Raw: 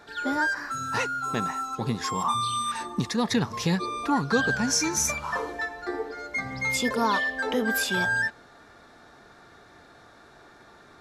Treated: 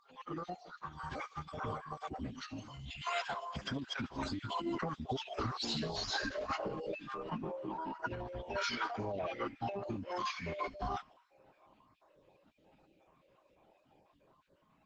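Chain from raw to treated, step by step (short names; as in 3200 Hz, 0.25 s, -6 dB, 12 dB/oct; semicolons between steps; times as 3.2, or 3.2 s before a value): random spectral dropouts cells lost 39%; Doppler pass-by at 4.16, 43 m/s, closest 11 m; bell 11000 Hz -9 dB 1.9 oct; speed mistake 45 rpm record played at 33 rpm; compressor 16:1, threshold -47 dBFS, peak gain reduction 23.5 dB; spectral gain 2.42–3.06, 470–1100 Hz -21 dB; low shelf 170 Hz -8.5 dB; on a send: thin delay 74 ms, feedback 71%, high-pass 3100 Hz, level -17.5 dB; on the sum: formant-preserving pitch shift -6.5 st; gain +15.5 dB; Opus 12 kbps 48000 Hz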